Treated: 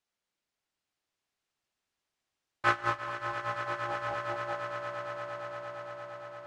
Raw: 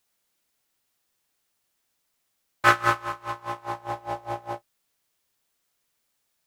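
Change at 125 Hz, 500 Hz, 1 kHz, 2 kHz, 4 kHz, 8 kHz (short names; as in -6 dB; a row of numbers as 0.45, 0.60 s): -5.5, -1.5, -6.0, -6.5, -7.0, -11.5 dB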